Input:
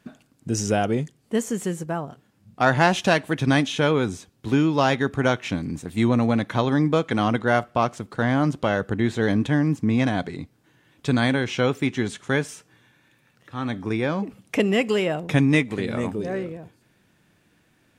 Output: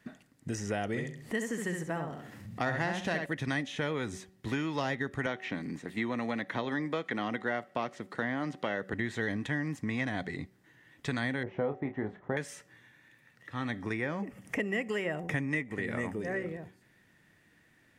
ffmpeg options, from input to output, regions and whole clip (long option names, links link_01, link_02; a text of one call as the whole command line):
ffmpeg -i in.wav -filter_complex "[0:a]asettb=1/sr,asplit=3[link_01][link_02][link_03];[link_01]atrim=end=0.874[link_04];[link_02]atrim=start=0.87:end=3.26,asetpts=PTS-STARTPTS,afade=type=in:duration=0.004:curve=qsin,afade=type=out:start_time=2.386:duration=0.004:curve=qsin,asplit=2[link_05][link_06];[link_06]adelay=67,lowpass=frequency=4200:poles=1,volume=-5dB,asplit=2[link_07][link_08];[link_08]adelay=67,lowpass=frequency=4200:poles=1,volume=0.22,asplit=2[link_09][link_10];[link_10]adelay=67,lowpass=frequency=4200:poles=1,volume=0.22[link_11];[link_05][link_07][link_09][link_11]amix=inputs=4:normalize=0,atrim=end_sample=105399,acompressor=mode=upward:threshold=-28dB:ratio=2.5:attack=3.2:release=140:knee=2.83:detection=peak[link_12];[link_03]atrim=start=3.256[link_13];[link_04][link_12]acrossfade=duration=0.004:curve1=hsin:curve2=qsin[link_14];[link_14][link_13]acrossfade=duration=0.004:curve1=qsin:curve2=hsin,asettb=1/sr,asplit=3[link_15][link_16][link_17];[link_15]atrim=end=5.264[link_18];[link_16]atrim=start=5.26:end=8.93,asetpts=PTS-STARTPTS,afade=type=in:duration=0.004:curve=qsin,afade=type=out:start_time=3.666:duration=0.004:curve=qsin,acrossover=split=4700[link_19][link_20];[link_20]acompressor=threshold=-57dB:ratio=4:attack=1:release=60[link_21];[link_19][link_21]amix=inputs=2:normalize=0,highpass=190[link_22];[link_17]atrim=start=8.926[link_23];[link_18][link_22]acrossfade=duration=0.004:curve1=hsin:curve2=qsin[link_24];[link_24][link_23]acrossfade=duration=0.004:curve1=qsin:curve2=hsin,asettb=1/sr,asplit=3[link_25][link_26][link_27];[link_25]atrim=end=11.434[link_28];[link_26]atrim=start=11.43:end=12.37,asetpts=PTS-STARTPTS,afade=type=in:duration=0.004:curve=qsin,afade=type=out:start_time=0.936:duration=0.004:curve=qsin,lowpass=frequency=720:width_type=q:width=1.9,asplit=2[link_29][link_30];[link_30]adelay=28,volume=-8.5dB[link_31];[link_29][link_31]amix=inputs=2:normalize=0,atrim=end_sample=41454[link_32];[link_27]atrim=start=12.366[link_33];[link_28][link_32]acrossfade=duration=0.004:curve1=hsin:curve2=qsin[link_34];[link_34][link_33]acrossfade=duration=0.004:curve1=qsin:curve2=hsin,asettb=1/sr,asplit=3[link_35][link_36][link_37];[link_35]atrim=end=13.944[link_38];[link_36]atrim=start=13.94:end=16.48,asetpts=PTS-STARTPTS,afade=type=in:duration=0.004:curve=qsin,afade=type=out:start_time=2.536:duration=0.004:curve=qsin,equalizer=frequency=4000:width=3.3:gain=-11.5,acompressor=mode=upward:threshold=-36dB:ratio=2.5:attack=3.2:release=140:knee=2.83:detection=peak[link_39];[link_37]atrim=start=16.476[link_40];[link_38][link_39]acrossfade=duration=0.004:curve1=hsin:curve2=qsin[link_41];[link_41][link_40]acrossfade=duration=0.004:curve1=qsin:curve2=hsin,equalizer=frequency=1900:width_type=o:width=0.2:gain=14.5,bandreject=frequency=188.7:width_type=h:width=4,bandreject=frequency=377.4:width_type=h:width=4,bandreject=frequency=566.1:width_type=h:width=4,bandreject=frequency=754.8:width_type=h:width=4,acrossover=split=650|2300[link_42][link_43][link_44];[link_42]acompressor=threshold=-29dB:ratio=4[link_45];[link_43]acompressor=threshold=-33dB:ratio=4[link_46];[link_44]acompressor=threshold=-39dB:ratio=4[link_47];[link_45][link_46][link_47]amix=inputs=3:normalize=0,volume=-4.5dB" out.wav